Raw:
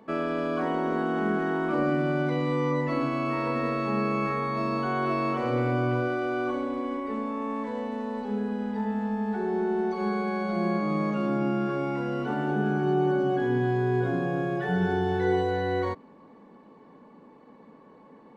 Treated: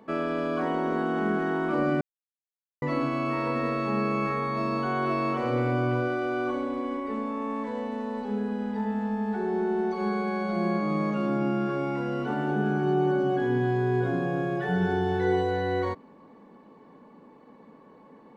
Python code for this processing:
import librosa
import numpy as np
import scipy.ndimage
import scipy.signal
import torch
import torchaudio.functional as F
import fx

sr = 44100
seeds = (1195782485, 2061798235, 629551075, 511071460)

y = fx.edit(x, sr, fx.silence(start_s=2.01, length_s=0.81), tone=tone)